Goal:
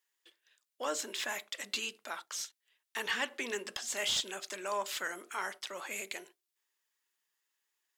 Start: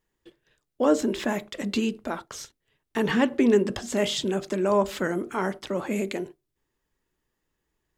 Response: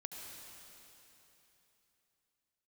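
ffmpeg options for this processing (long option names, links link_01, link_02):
-filter_complex "[0:a]aderivative,asplit=2[link_01][link_02];[link_02]highpass=frequency=720:poles=1,volume=12dB,asoftclip=type=tanh:threshold=-20.5dB[link_03];[link_01][link_03]amix=inputs=2:normalize=0,lowpass=frequency=2500:poles=1,volume=-6dB,volume=3.5dB"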